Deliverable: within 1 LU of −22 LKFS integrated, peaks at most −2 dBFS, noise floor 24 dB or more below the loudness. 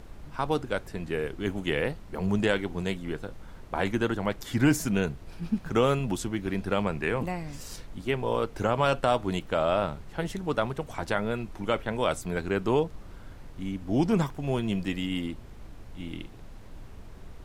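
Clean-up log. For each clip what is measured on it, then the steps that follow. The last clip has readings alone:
background noise floor −46 dBFS; target noise floor −53 dBFS; integrated loudness −29.0 LKFS; sample peak −9.5 dBFS; target loudness −22.0 LKFS
→ noise reduction from a noise print 7 dB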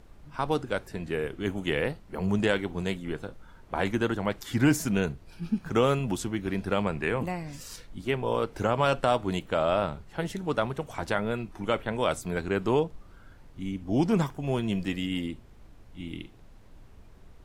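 background noise floor −52 dBFS; target noise floor −53 dBFS
→ noise reduction from a noise print 6 dB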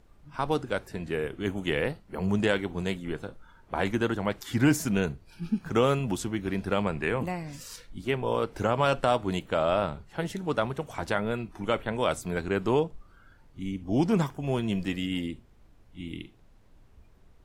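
background noise floor −57 dBFS; integrated loudness −29.0 LKFS; sample peak −9.5 dBFS; target loudness −22.0 LKFS
→ level +7 dB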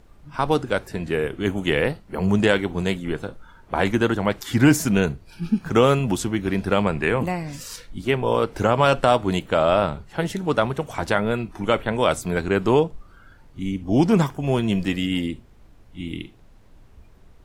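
integrated loudness −22.0 LKFS; sample peak −2.5 dBFS; background noise floor −50 dBFS

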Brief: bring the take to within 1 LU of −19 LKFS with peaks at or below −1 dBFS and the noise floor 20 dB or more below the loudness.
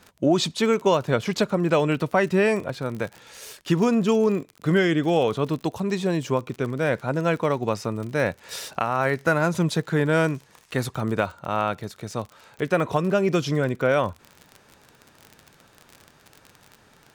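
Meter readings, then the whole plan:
crackle rate 41 per second; integrated loudness −24.0 LKFS; sample peak −8.5 dBFS; target loudness −19.0 LKFS
→ click removal
level +5 dB

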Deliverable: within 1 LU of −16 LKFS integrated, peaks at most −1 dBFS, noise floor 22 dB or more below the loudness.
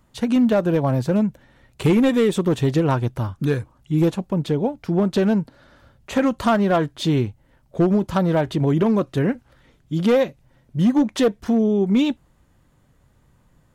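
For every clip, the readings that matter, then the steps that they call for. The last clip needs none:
share of clipped samples 1.3%; peaks flattened at −11.5 dBFS; integrated loudness −20.5 LKFS; sample peak −11.5 dBFS; target loudness −16.0 LKFS
→ clipped peaks rebuilt −11.5 dBFS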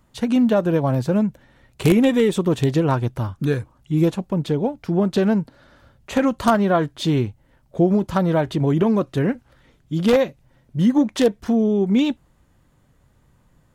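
share of clipped samples 0.0%; integrated loudness −20.0 LKFS; sample peak −2.5 dBFS; target loudness −16.0 LKFS
→ level +4 dB
brickwall limiter −1 dBFS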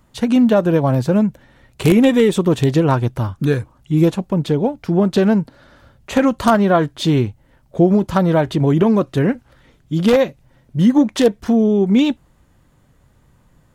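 integrated loudness −16.5 LKFS; sample peak −1.0 dBFS; background noise floor −55 dBFS

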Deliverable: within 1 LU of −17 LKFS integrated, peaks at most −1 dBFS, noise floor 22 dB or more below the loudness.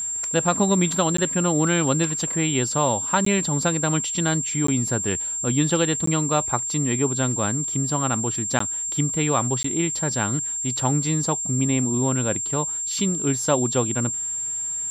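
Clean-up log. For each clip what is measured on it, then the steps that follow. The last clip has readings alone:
number of dropouts 6; longest dropout 14 ms; interfering tone 7,400 Hz; level of the tone −25 dBFS; integrated loudness −21.5 LKFS; sample peak −6.5 dBFS; target loudness −17.0 LKFS
→ repair the gap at 0:01.17/0:03.25/0:04.67/0:06.06/0:08.59/0:09.63, 14 ms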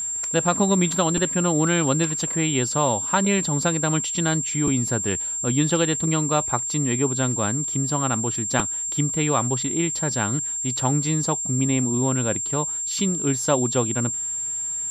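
number of dropouts 0; interfering tone 7,400 Hz; level of the tone −25 dBFS
→ notch filter 7,400 Hz, Q 30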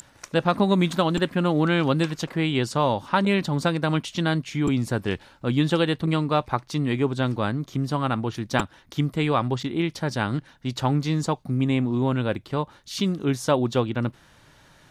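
interfering tone none found; integrated loudness −24.5 LKFS; sample peak −7.5 dBFS; target loudness −17.0 LKFS
→ level +7.5 dB
brickwall limiter −1 dBFS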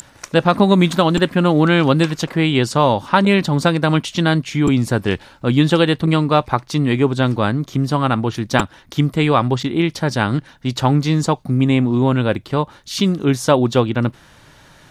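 integrated loudness −17.0 LKFS; sample peak −1.0 dBFS; background noise floor −48 dBFS

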